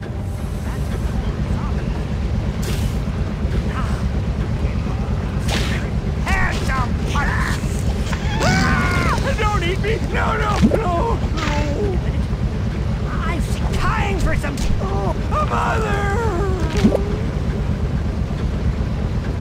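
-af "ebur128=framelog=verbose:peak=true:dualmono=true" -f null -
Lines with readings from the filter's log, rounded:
Integrated loudness:
  I:         -17.6 LUFS
  Threshold: -27.6 LUFS
Loudness range:
  LRA:         3.9 LU
  Threshold: -37.3 LUFS
  LRA low:   -19.4 LUFS
  LRA high:  -15.4 LUFS
True peak:
  Peak:       -1.9 dBFS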